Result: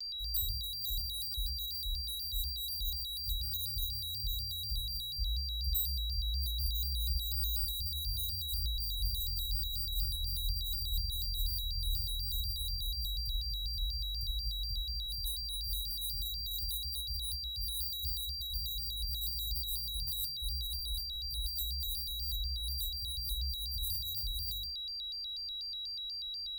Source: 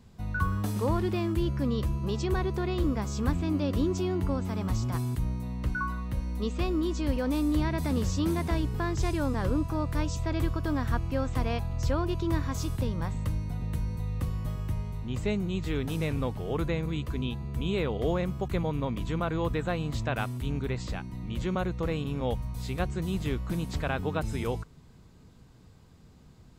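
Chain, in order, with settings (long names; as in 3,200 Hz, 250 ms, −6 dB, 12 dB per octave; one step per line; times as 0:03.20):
in parallel at −3 dB: brickwall limiter −23 dBFS, peak gain reduction 9.5 dB
on the sum: transistor ladder low-pass 6,700 Hz, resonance 20%
feedback delay network reverb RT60 0.36 s, low-frequency decay 0.8×, high-frequency decay 0.5×, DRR −2 dB
decimation without filtering 6×
inverse Chebyshev band-stop filter 210–4,300 Hz, stop band 60 dB
steady tone 4,300 Hz −40 dBFS
bass and treble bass +1 dB, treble +13 dB
pitch modulation by a square or saw wave square 4.1 Hz, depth 160 cents
level −5 dB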